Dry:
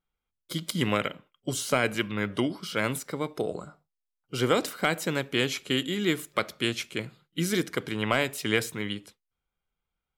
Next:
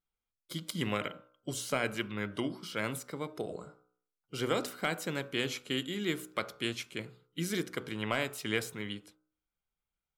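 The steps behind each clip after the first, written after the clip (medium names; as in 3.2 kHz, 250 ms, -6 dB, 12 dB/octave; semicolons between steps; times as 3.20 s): de-hum 61.89 Hz, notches 25; trim -6.5 dB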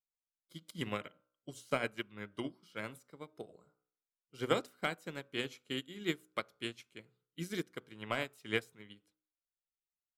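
upward expansion 2.5:1, over -41 dBFS; trim +2 dB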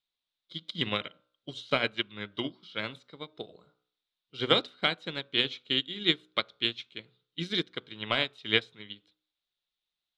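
resonant low-pass 3.7 kHz, resonance Q 6; trim +5 dB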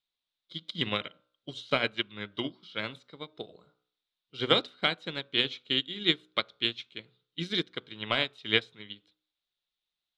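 no audible change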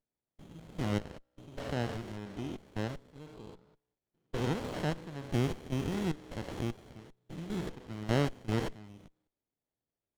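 spectrogram pixelated in time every 200 ms; sliding maximum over 33 samples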